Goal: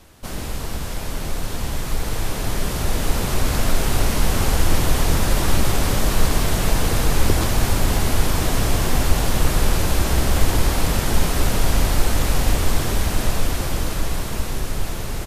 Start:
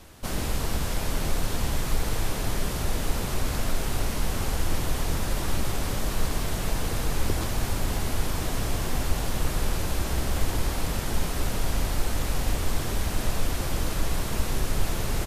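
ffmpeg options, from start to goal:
-af "dynaudnorm=f=630:g=9:m=3.76"

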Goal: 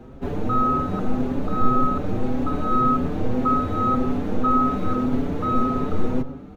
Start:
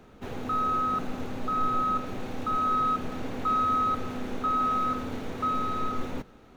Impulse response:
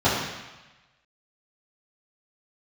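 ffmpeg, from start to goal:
-filter_complex "[0:a]tiltshelf=f=970:g=7.5,asplit=2[s0][s1];[1:a]atrim=start_sample=2205,adelay=98[s2];[s1][s2]afir=irnorm=-1:irlink=0,volume=0.02[s3];[s0][s3]amix=inputs=2:normalize=0,asplit=2[s4][s5];[s5]adelay=5.9,afreqshift=1.8[s6];[s4][s6]amix=inputs=2:normalize=1,volume=2.51"

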